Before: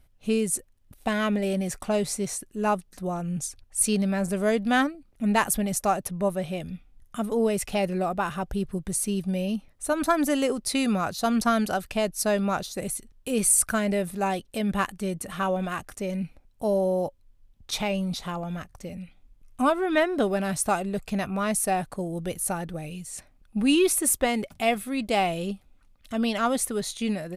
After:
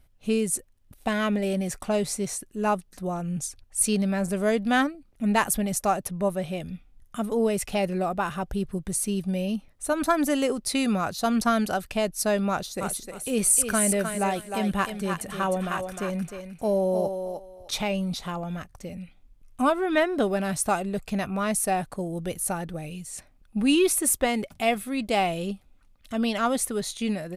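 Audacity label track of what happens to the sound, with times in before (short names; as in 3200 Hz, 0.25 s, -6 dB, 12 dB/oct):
12.500000	17.810000	thinning echo 0.307 s, feedback 23%, high-pass 360 Hz, level -5 dB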